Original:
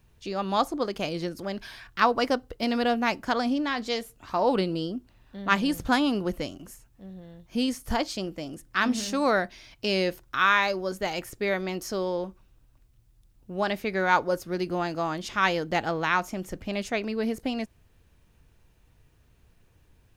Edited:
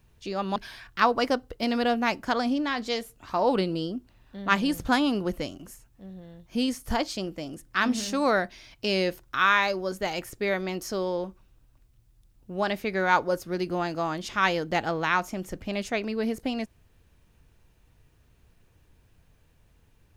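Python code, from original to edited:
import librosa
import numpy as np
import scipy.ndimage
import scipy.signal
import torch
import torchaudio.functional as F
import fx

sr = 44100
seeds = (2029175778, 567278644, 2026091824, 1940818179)

y = fx.edit(x, sr, fx.cut(start_s=0.56, length_s=1.0), tone=tone)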